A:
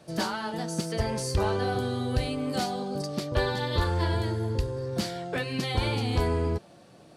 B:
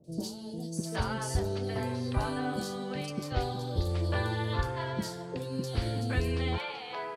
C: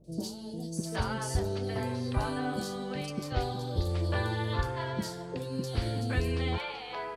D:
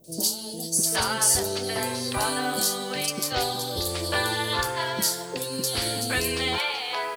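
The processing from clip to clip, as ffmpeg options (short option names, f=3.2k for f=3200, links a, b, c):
-filter_complex "[0:a]acrossover=split=520|4100[a][b][c];[c]adelay=40[d];[b]adelay=770[e];[a][e][d]amix=inputs=3:normalize=0,volume=-3dB"
-af "aeval=exprs='val(0)+0.000794*(sin(2*PI*50*n/s)+sin(2*PI*2*50*n/s)/2+sin(2*PI*3*50*n/s)/3+sin(2*PI*4*50*n/s)/4+sin(2*PI*5*50*n/s)/5)':c=same"
-af "aemphasis=mode=production:type=riaa,volume=8dB"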